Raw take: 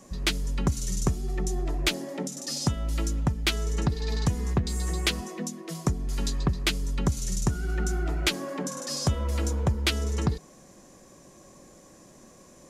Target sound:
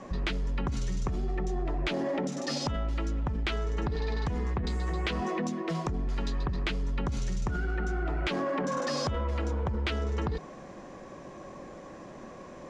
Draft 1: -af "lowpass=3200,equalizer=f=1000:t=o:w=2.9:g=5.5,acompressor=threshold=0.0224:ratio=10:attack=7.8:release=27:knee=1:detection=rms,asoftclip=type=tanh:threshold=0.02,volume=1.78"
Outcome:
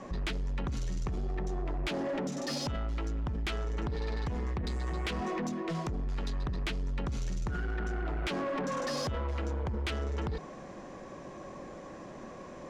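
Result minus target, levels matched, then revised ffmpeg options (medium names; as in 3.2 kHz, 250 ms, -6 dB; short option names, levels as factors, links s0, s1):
saturation: distortion +16 dB
-af "lowpass=3200,equalizer=f=1000:t=o:w=2.9:g=5.5,acompressor=threshold=0.0224:ratio=10:attack=7.8:release=27:knee=1:detection=rms,asoftclip=type=tanh:threshold=0.075,volume=1.78"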